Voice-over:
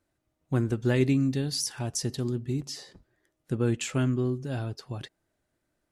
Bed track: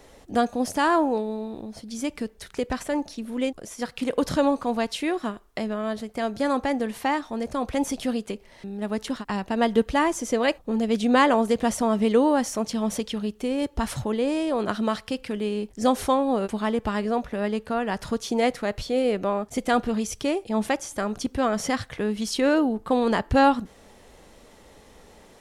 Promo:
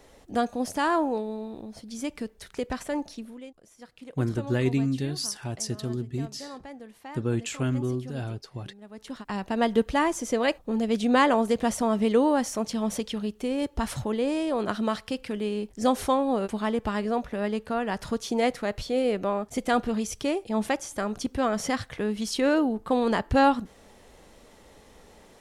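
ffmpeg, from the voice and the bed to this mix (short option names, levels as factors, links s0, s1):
-filter_complex "[0:a]adelay=3650,volume=0.891[s0];[1:a]volume=3.98,afade=t=out:st=3.16:d=0.24:silence=0.199526,afade=t=in:st=8.93:d=0.52:silence=0.16788[s1];[s0][s1]amix=inputs=2:normalize=0"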